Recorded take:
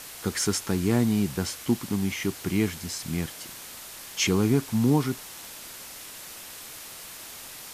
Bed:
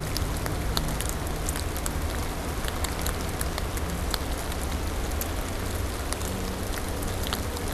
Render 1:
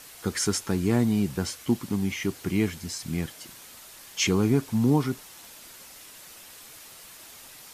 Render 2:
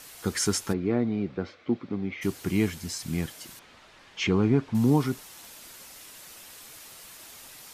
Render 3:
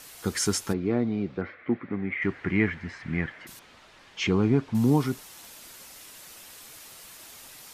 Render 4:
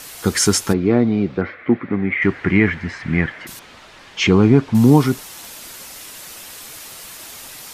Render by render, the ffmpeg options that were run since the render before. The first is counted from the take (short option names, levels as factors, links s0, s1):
-af "afftdn=nr=6:nf=-42"
-filter_complex "[0:a]asplit=3[s0][s1][s2];[s0]afade=t=out:st=0.72:d=0.02[s3];[s1]highpass=130,equalizer=f=140:t=q:w=4:g=-9,equalizer=f=210:t=q:w=4:g=-4,equalizer=f=520:t=q:w=4:g=3,equalizer=f=940:t=q:w=4:g=-9,equalizer=f=1700:t=q:w=4:g=-6,equalizer=f=2900:t=q:w=4:g=-10,lowpass=f=3100:w=0.5412,lowpass=f=3100:w=1.3066,afade=t=in:st=0.72:d=0.02,afade=t=out:st=2.21:d=0.02[s4];[s2]afade=t=in:st=2.21:d=0.02[s5];[s3][s4][s5]amix=inputs=3:normalize=0,asettb=1/sr,asplit=3[s6][s7][s8];[s6]atrim=end=3.594[s9];[s7]atrim=start=3.59:end=4.75,asetpts=PTS-STARTPTS,afade=t=in:d=0.004:c=qsin,afade=t=out:st=1.156:d=0.004:c=qsin,lowpass=3000[s10];[s8]atrim=start=4.746[s11];[s9][s10]acrossfade=d=0.004:c1=hsin:c2=qsin[s12];[s12][s11]acrossfade=d=0.004:c1=qsin:c2=hsin"
-filter_complex "[0:a]asettb=1/sr,asplit=3[s0][s1][s2];[s0]atrim=end=1.414[s3];[s1]atrim=start=1.41:end=3.47,asetpts=PTS-STARTPTS,afade=t=in:d=0.004:c=qsin,afade=t=out:st=2.056:d=0.004:c=qsin,lowpass=f=1900:t=q:w=4.1[s4];[s2]atrim=start=3.466[s5];[s3][s4]acrossfade=d=0.004:c1=hsin:c2=qsin[s6];[s6][s5]acrossfade=d=0.004:c1=qsin:c2=hsin"
-af "volume=3.35,alimiter=limit=0.794:level=0:latency=1"